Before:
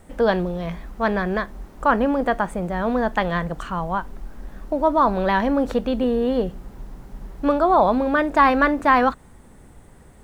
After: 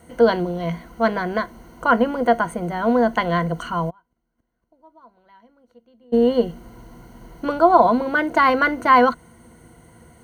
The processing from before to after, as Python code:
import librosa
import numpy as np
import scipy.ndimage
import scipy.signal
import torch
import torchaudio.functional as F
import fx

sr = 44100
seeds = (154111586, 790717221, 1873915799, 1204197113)

y = fx.ripple_eq(x, sr, per_octave=1.9, db=13)
y = fx.gate_flip(y, sr, shuts_db=-25.0, range_db=-34, at=(3.89, 6.12), fade=0.02)
y = scipy.signal.sosfilt(scipy.signal.butter(2, 86.0, 'highpass', fs=sr, output='sos'), y)